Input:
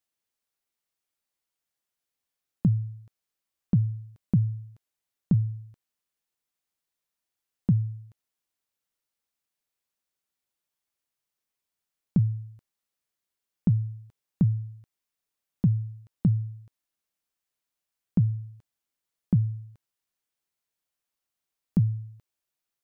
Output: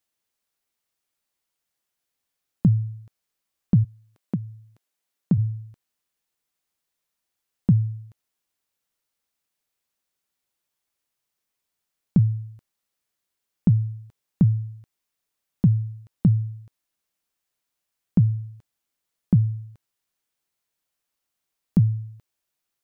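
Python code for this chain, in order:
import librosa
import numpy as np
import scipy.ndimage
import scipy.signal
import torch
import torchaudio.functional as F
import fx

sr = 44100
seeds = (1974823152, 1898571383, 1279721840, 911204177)

y = fx.highpass(x, sr, hz=fx.line((3.83, 370.0), (5.37, 140.0)), slope=12, at=(3.83, 5.37), fade=0.02)
y = y * 10.0 ** (4.5 / 20.0)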